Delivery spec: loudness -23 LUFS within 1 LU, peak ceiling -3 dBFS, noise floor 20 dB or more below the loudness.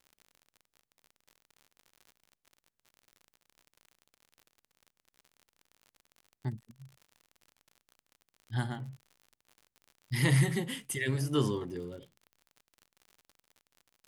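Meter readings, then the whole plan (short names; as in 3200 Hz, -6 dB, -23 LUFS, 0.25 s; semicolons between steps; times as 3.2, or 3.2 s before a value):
ticks 54/s; loudness -32.5 LUFS; peak -14.0 dBFS; loudness target -23.0 LUFS
-> de-click; gain +9.5 dB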